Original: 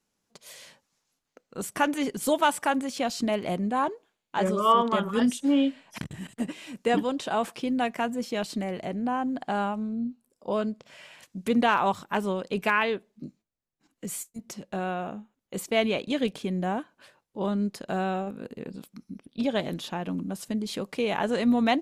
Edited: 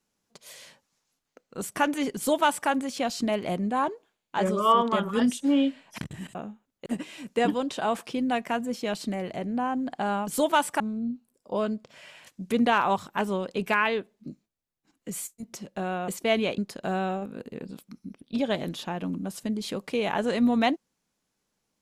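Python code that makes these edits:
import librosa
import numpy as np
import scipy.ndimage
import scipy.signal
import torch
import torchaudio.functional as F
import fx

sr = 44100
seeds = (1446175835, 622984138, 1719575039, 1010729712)

y = fx.edit(x, sr, fx.duplicate(start_s=2.16, length_s=0.53, to_s=9.76),
    fx.move(start_s=15.04, length_s=0.51, to_s=6.35),
    fx.cut(start_s=16.05, length_s=1.58), tone=tone)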